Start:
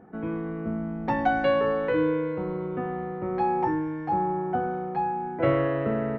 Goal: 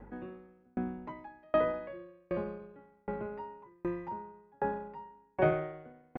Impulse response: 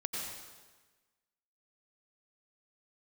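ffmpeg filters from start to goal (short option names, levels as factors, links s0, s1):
-filter_complex "[0:a]asetrate=49501,aresample=44100,atempo=0.890899,acrossover=split=2500[s0][s1];[s1]acompressor=threshold=0.00224:ratio=4:attack=1:release=60[s2];[s0][s2]amix=inputs=2:normalize=0,aeval=exprs='val(0)+0.00316*(sin(2*PI*50*n/s)+sin(2*PI*2*50*n/s)/2+sin(2*PI*3*50*n/s)/3+sin(2*PI*4*50*n/s)/4+sin(2*PI*5*50*n/s)/5)':c=same,aeval=exprs='val(0)*pow(10,-40*if(lt(mod(1.3*n/s,1),2*abs(1.3)/1000),1-mod(1.3*n/s,1)/(2*abs(1.3)/1000),(mod(1.3*n/s,1)-2*abs(1.3)/1000)/(1-2*abs(1.3)/1000))/20)':c=same"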